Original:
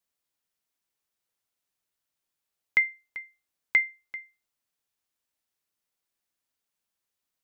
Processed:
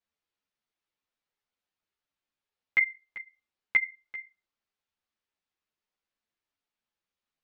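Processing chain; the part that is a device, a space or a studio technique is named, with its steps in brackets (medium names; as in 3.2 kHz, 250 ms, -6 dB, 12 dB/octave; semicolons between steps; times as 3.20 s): string-machine ensemble chorus (three-phase chorus; low-pass 4 kHz 12 dB/octave); trim +2 dB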